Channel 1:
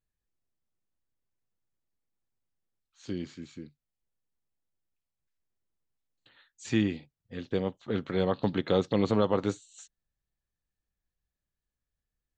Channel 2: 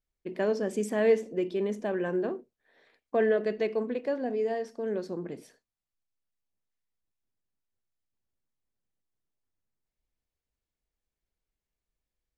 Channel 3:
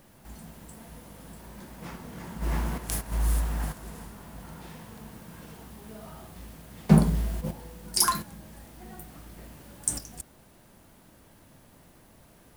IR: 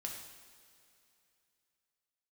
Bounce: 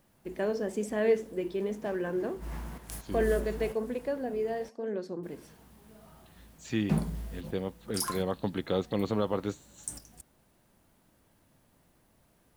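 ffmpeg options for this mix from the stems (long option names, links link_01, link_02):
-filter_complex "[0:a]volume=-4dB[link_01];[1:a]flanger=delay=0.6:depth=9.7:regen=-85:speed=1:shape=sinusoidal,volume=2dB[link_02];[2:a]volume=-10.5dB,asplit=3[link_03][link_04][link_05];[link_03]atrim=end=4.69,asetpts=PTS-STARTPTS,afade=type=out:start_time=4.686:duration=0.004:curve=hsin[link_06];[link_04]atrim=start=4.69:end=5.23,asetpts=PTS-STARTPTS,volume=0[link_07];[link_05]atrim=start=5.23,asetpts=PTS-STARTPTS,afade=type=in:duration=0.004:curve=hsin[link_08];[link_06][link_07][link_08]concat=n=3:v=0:a=1[link_09];[link_01][link_02][link_09]amix=inputs=3:normalize=0"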